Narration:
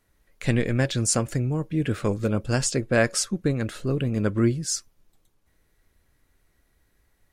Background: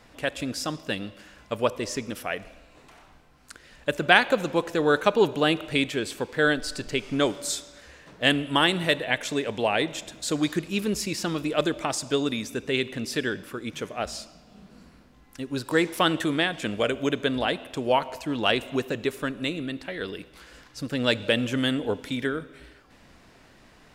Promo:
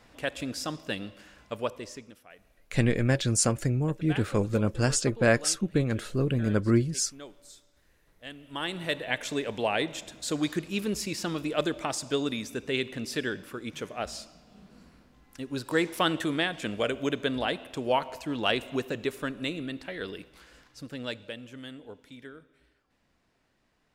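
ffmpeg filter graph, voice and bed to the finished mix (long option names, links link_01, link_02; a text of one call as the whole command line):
ffmpeg -i stem1.wav -i stem2.wav -filter_complex "[0:a]adelay=2300,volume=-1.5dB[link_01];[1:a]volume=15dB,afade=type=out:start_time=1.31:duration=0.9:silence=0.11885,afade=type=in:start_time=8.39:duration=0.84:silence=0.11885,afade=type=out:start_time=20.1:duration=1.26:silence=0.188365[link_02];[link_01][link_02]amix=inputs=2:normalize=0" out.wav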